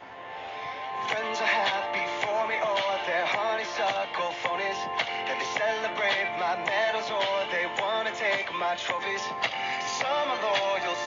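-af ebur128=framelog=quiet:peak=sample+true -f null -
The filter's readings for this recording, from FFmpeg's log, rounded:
Integrated loudness:
  I:         -27.7 LUFS
  Threshold: -37.8 LUFS
Loudness range:
  LRA:         1.1 LU
  Threshold: -47.7 LUFS
  LRA low:   -28.1 LUFS
  LRA high:  -27.0 LUFS
Sample peak:
  Peak:      -12.9 dBFS
True peak:
  Peak:      -12.9 dBFS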